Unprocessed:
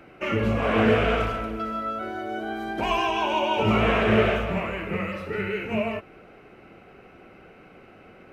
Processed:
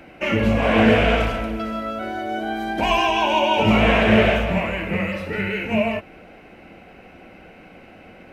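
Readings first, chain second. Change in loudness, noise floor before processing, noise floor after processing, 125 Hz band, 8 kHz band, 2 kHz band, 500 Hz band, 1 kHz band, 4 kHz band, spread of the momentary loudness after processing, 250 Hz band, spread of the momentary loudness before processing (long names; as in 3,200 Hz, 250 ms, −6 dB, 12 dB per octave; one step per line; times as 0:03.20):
+5.0 dB, −50 dBFS, −46 dBFS, +4.5 dB, can't be measured, +6.0 dB, +4.0 dB, +4.5 dB, +7.0 dB, 11 LU, +6.0 dB, 11 LU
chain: thirty-one-band graphic EQ 125 Hz −9 dB, 400 Hz −9 dB, 1,250 Hz −10 dB
level +7 dB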